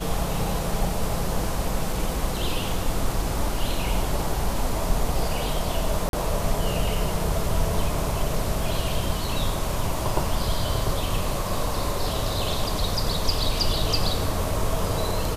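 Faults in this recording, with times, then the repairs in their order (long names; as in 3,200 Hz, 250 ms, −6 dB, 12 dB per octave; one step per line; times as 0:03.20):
0:06.09–0:06.13: drop-out 42 ms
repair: repair the gap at 0:06.09, 42 ms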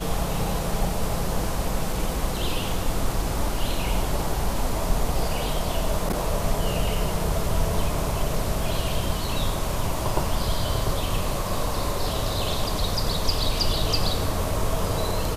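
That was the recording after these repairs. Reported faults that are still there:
none of them is left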